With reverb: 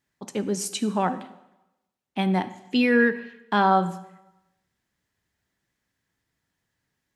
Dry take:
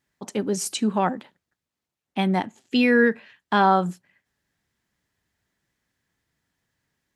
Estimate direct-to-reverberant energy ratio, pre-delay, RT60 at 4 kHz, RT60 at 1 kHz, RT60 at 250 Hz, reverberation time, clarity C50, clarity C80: 12.0 dB, 6 ms, 0.90 s, 1.0 s, 0.95 s, 0.95 s, 14.0 dB, 16.0 dB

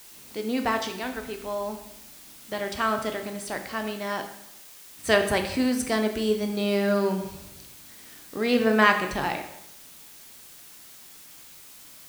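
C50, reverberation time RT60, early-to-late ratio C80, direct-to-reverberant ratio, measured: 8.5 dB, 0.80 s, 11.5 dB, 5.0 dB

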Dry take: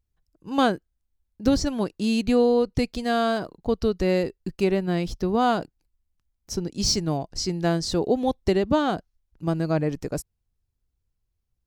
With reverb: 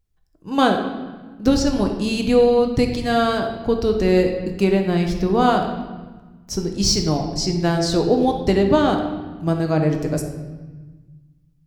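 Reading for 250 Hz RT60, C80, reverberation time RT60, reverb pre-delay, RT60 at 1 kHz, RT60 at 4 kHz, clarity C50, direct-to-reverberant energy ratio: 1.9 s, 8.0 dB, 1.3 s, 7 ms, 1.3 s, 1.1 s, 6.0 dB, 3.0 dB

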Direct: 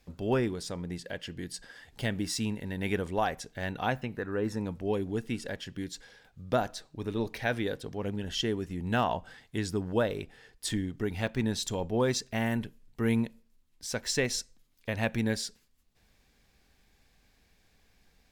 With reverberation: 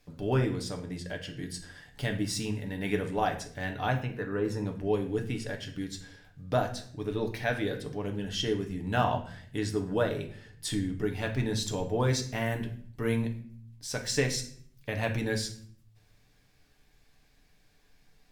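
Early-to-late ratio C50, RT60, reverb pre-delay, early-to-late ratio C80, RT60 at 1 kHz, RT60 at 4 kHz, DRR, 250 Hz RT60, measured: 11.0 dB, 0.55 s, 7 ms, 15.0 dB, 0.50 s, 0.45 s, 3.0 dB, 0.90 s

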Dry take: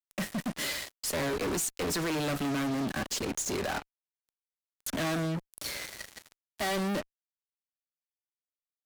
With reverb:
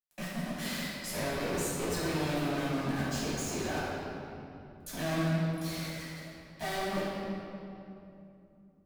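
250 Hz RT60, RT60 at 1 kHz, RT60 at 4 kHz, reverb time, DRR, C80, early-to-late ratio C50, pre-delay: 3.7 s, 2.6 s, 1.9 s, 2.8 s, -10.0 dB, -0.5 dB, -2.5 dB, 4 ms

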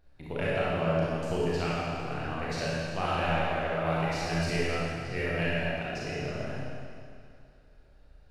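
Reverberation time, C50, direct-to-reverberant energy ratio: 2.3 s, -5.0 dB, -8.0 dB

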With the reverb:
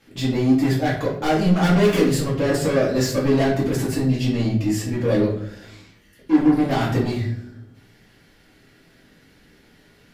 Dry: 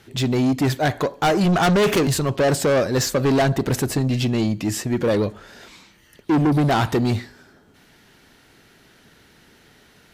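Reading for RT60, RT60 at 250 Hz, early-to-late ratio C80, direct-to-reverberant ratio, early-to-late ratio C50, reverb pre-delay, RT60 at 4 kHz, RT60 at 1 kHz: 0.65 s, 0.95 s, 9.0 dB, -8.5 dB, 5.0 dB, 3 ms, 0.45 s, 0.50 s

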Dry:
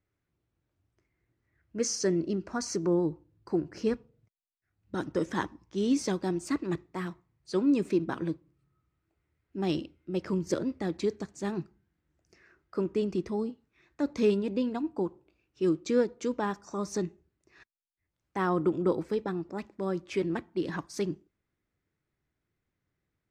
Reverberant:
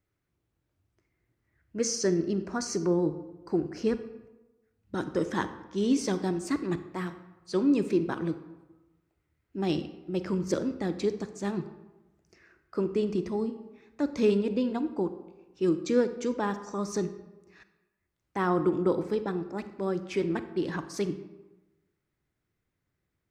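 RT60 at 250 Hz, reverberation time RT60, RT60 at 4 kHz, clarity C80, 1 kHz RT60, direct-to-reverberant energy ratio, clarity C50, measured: 1.1 s, 1.1 s, 0.65 s, 14.0 dB, 1.1 s, 11.0 dB, 12.0 dB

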